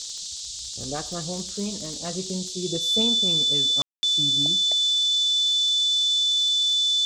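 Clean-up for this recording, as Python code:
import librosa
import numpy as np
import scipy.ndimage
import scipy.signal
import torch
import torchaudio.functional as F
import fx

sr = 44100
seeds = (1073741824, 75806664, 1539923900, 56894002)

y = fx.fix_declick_ar(x, sr, threshold=6.5)
y = fx.notch(y, sr, hz=3500.0, q=30.0)
y = fx.fix_ambience(y, sr, seeds[0], print_start_s=0.27, print_end_s=0.77, start_s=3.82, end_s=4.03)
y = fx.noise_reduce(y, sr, print_start_s=0.27, print_end_s=0.77, reduce_db=30.0)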